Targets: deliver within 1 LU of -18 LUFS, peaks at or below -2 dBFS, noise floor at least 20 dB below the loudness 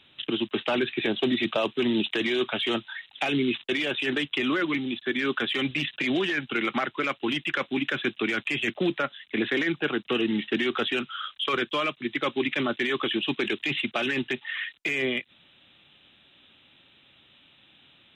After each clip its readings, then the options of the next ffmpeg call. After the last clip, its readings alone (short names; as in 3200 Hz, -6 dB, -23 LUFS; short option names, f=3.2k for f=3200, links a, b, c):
loudness -27.0 LUFS; peak -13.5 dBFS; loudness target -18.0 LUFS
-> -af "volume=9dB"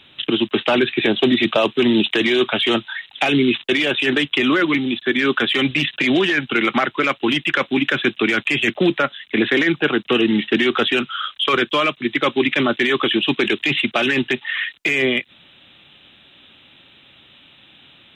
loudness -18.0 LUFS; peak -4.5 dBFS; noise floor -50 dBFS